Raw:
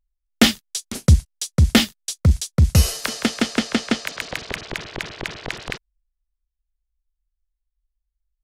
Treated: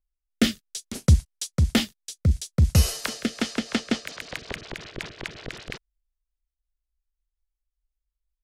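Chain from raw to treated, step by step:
rotating-speaker cabinet horn 0.6 Hz, later 5.5 Hz, at 0:02.97
level −3.5 dB

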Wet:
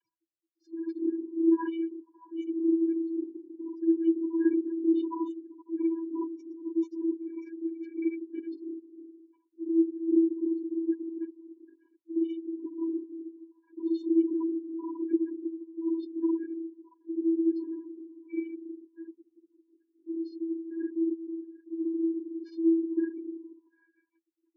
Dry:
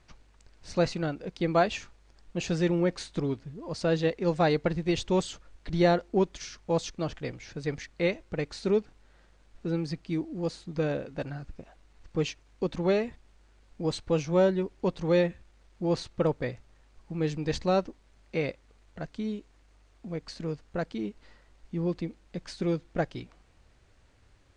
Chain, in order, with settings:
random phases in long frames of 200 ms
on a send: echo through a band-pass that steps 157 ms, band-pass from 210 Hz, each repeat 0.7 octaves, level −6 dB
on the sum: gate on every frequency bin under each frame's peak −15 dB strong
channel vocoder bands 32, square 329 Hz

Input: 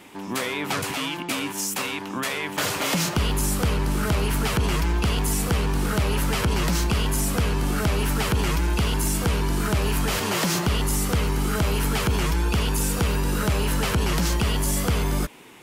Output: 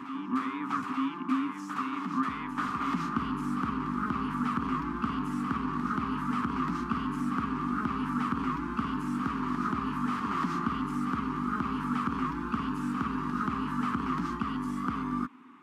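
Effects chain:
pair of resonant band-passes 550 Hz, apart 2.2 octaves
on a send: backwards echo 884 ms −6.5 dB
on the sum: level +4.5 dB

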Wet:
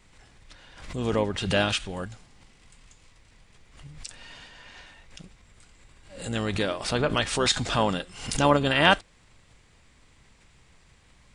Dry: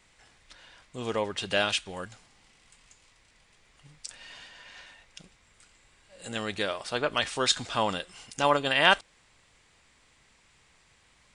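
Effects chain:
low-shelf EQ 330 Hz +10.5 dB
pitch-shifted copies added −12 semitones −12 dB
background raised ahead of every attack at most 85 dB per second

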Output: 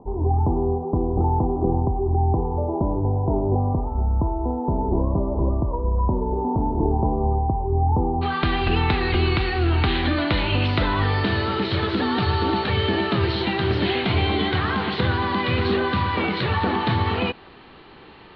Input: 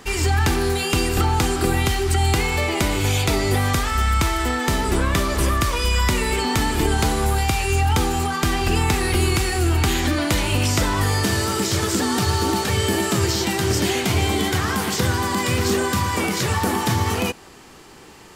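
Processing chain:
Chebyshev low-pass filter 980 Hz, order 6, from 0:08.21 4,200 Hz

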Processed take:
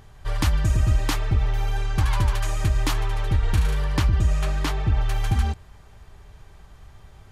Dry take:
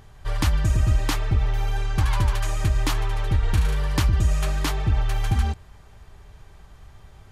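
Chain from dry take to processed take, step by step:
0:03.84–0:05.01: high-shelf EQ 6,300 Hz −7.5 dB

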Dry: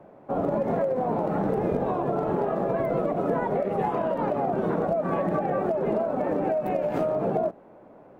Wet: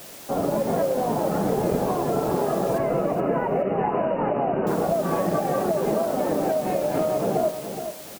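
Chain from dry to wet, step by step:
in parallel at −4 dB: bit-depth reduction 6 bits, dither triangular
0:02.78–0:04.67: on the sum: linear-phase brick-wall low-pass 3,000 Hz
repeating echo 422 ms, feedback 25%, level −9 dB
level −2.5 dB

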